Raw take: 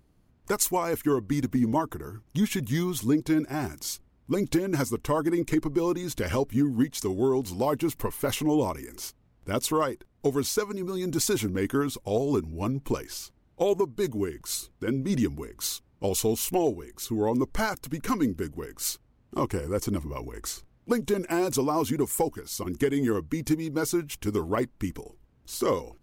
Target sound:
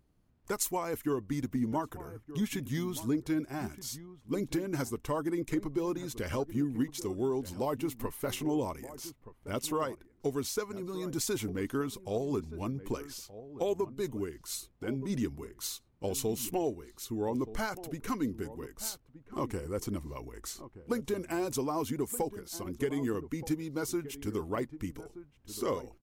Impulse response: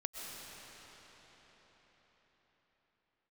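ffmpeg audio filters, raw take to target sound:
-filter_complex "[0:a]asplit=2[a][b];[b]adelay=1224,volume=-14dB,highshelf=f=4k:g=-27.6[c];[a][c]amix=inputs=2:normalize=0,volume=-7dB"

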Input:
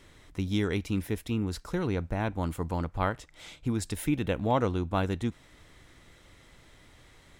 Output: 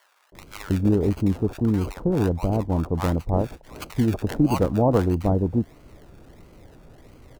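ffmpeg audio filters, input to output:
-filter_complex "[0:a]acrossover=split=1200[a][b];[b]acrusher=samples=34:mix=1:aa=0.000001:lfo=1:lforange=20.4:lforate=1.5[c];[a][c]amix=inputs=2:normalize=0,acrossover=split=910[d][e];[d]adelay=320[f];[f][e]amix=inputs=2:normalize=0,volume=8.5dB"

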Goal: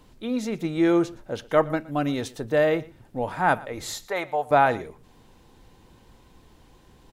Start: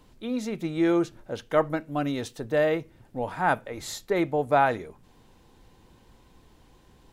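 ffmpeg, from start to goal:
-filter_complex "[0:a]asettb=1/sr,asplit=3[a][b][c];[a]atrim=end=4.084[d];[b]atrim=start=4.08:end=4.51,asetpts=PTS-STARTPTS,afade=t=in:d=0.004:c=qsin,afade=t=out:st=0.426:d=0.004:c=qsin,lowshelf=f=470:t=q:w=1.5:g=-13[e];[c]atrim=start=4.506[f];[d][e]acrossfade=d=0.004:c1=hsin:c2=qsin[g];[g][f]acrossfade=d=0.004:c1=qsin:c2=hsin,asplit=2[h][i];[i]aecho=0:1:118:0.0891[j];[h][j]amix=inputs=2:normalize=0,volume=2.5dB"

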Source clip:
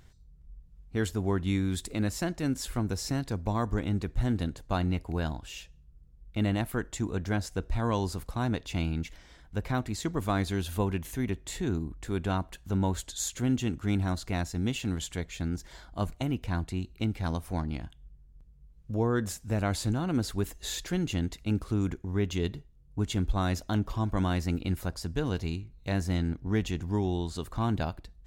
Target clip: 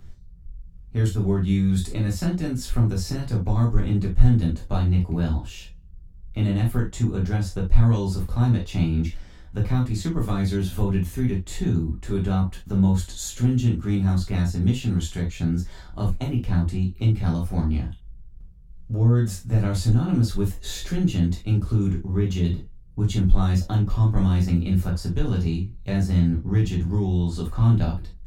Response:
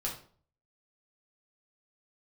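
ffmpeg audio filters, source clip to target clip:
-filter_complex "[0:a]lowshelf=f=290:g=8.5,acrossover=split=190|3000[a][b][c];[b]acompressor=threshold=-30dB:ratio=3[d];[a][d][c]amix=inputs=3:normalize=0[e];[1:a]atrim=start_sample=2205,atrim=end_sample=3528[f];[e][f]afir=irnorm=-1:irlink=0"

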